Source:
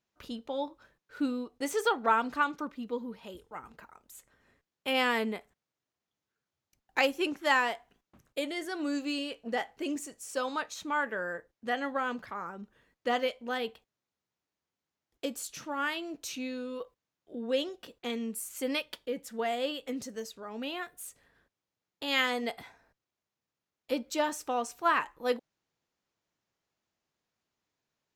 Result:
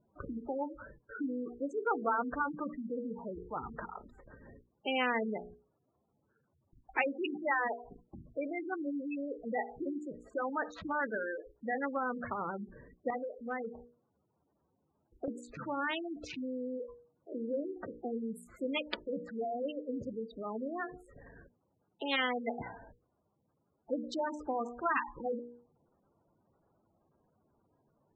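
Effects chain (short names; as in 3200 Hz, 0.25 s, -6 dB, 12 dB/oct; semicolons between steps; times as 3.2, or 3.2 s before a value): Wiener smoothing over 15 samples; spectral gate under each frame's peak -10 dB strong; notches 60/120/180/240/300/360/420/480 Hz; dynamic EQ 1100 Hz, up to -4 dB, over -47 dBFS, Q 5.1; 13.1–15.28 compressor 2:1, threshold -42 dBFS, peak gain reduction 8.5 dB; air absorption 390 m; spectral compressor 2:1; gain +1.5 dB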